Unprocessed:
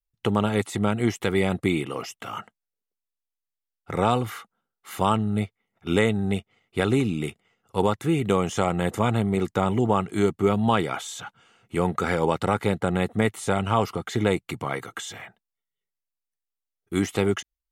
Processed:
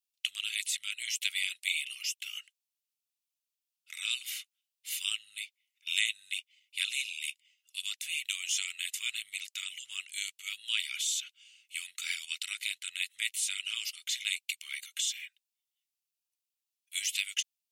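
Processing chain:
elliptic high-pass filter 2,500 Hz, stop band 70 dB
level +5.5 dB

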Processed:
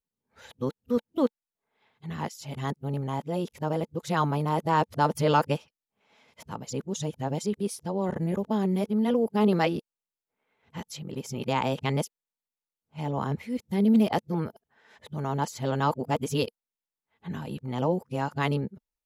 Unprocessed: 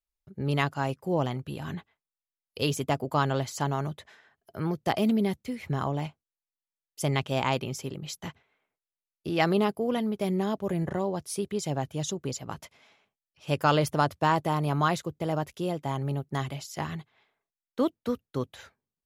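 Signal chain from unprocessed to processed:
played backwards from end to start
hollow resonant body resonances 220/470/880 Hz, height 7 dB, ringing for 30 ms
level −2.5 dB

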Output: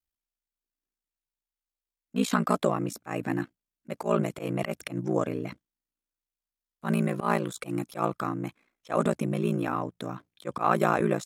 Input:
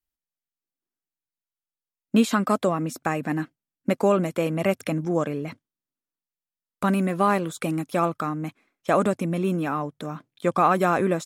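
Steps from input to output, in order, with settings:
volume swells 108 ms
ring modulation 29 Hz

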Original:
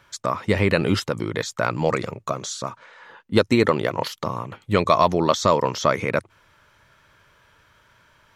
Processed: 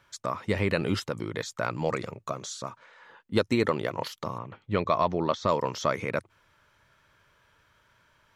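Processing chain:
0:04.38–0:05.49: high-frequency loss of the air 160 metres
level −7 dB

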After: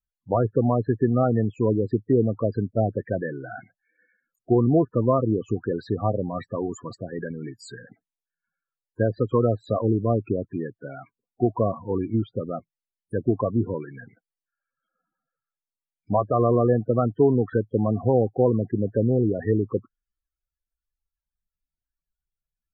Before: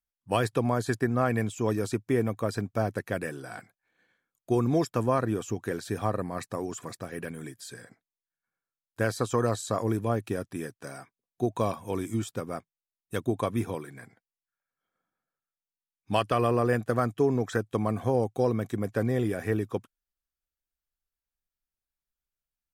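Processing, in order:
treble cut that deepens with the level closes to 1,200 Hz, closed at −24 dBFS
spectral peaks only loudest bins 16
level +6 dB

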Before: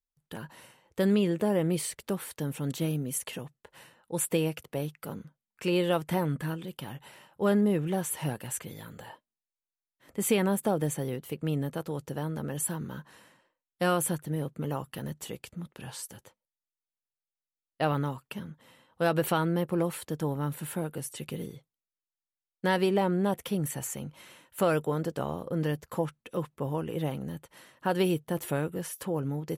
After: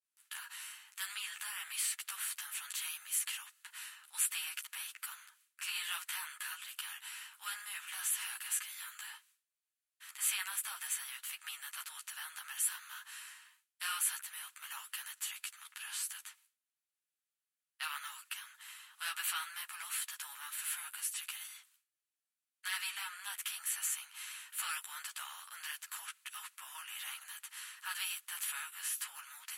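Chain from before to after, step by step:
compressor on every frequency bin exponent 0.6
downward expander −52 dBFS
Bessel high-pass filter 2,100 Hz, order 8
string-ensemble chorus

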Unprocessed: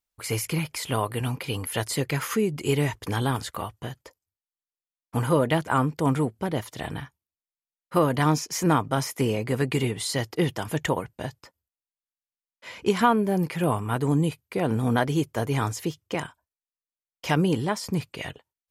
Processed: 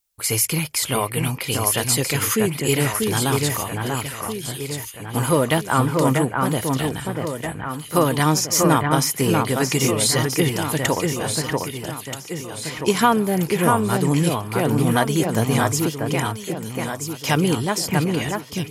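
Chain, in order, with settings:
high-shelf EQ 4,300 Hz +11.5 dB
on a send: delay that swaps between a low-pass and a high-pass 640 ms, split 2,500 Hz, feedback 68%, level −3 dB
on the sum: level +3 dB

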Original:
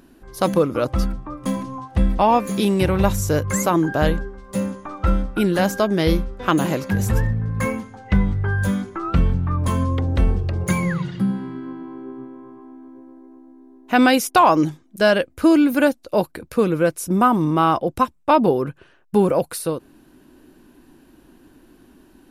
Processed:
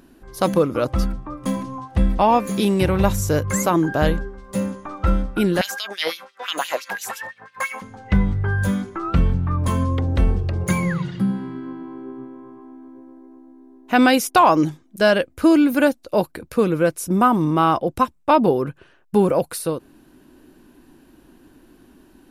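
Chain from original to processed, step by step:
0:05.61–0:07.82: auto-filter high-pass sine 5.9 Hz 680–3,600 Hz

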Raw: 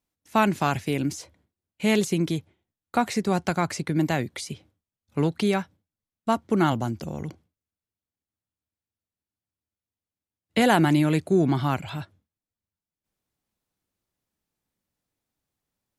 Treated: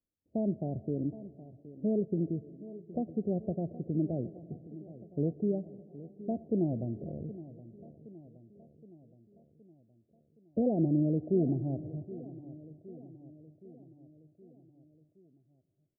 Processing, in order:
Butterworth low-pass 650 Hz 72 dB per octave
repeating echo 769 ms, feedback 58%, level −16.5 dB
convolution reverb RT60 3.5 s, pre-delay 28 ms, DRR 19 dB
level −7 dB

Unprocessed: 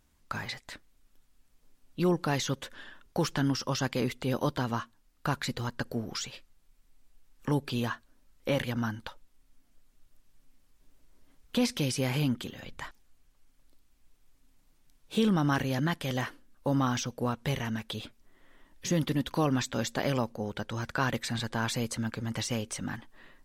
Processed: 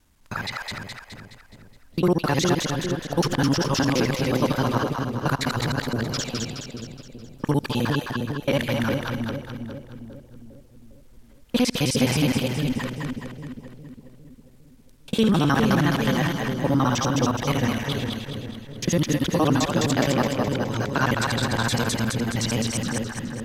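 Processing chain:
reversed piece by piece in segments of 52 ms
echo with a time of its own for lows and highs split 550 Hz, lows 405 ms, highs 210 ms, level −3 dB
level +6.5 dB

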